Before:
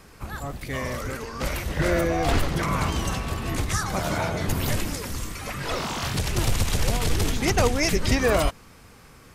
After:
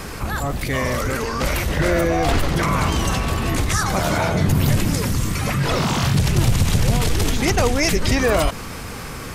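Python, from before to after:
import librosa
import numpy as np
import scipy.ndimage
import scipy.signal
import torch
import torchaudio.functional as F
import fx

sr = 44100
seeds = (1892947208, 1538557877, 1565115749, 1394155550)

y = fx.peak_eq(x, sr, hz=140.0, db=10.0, octaves=1.5, at=(4.35, 7.02))
y = fx.env_flatten(y, sr, amount_pct=50)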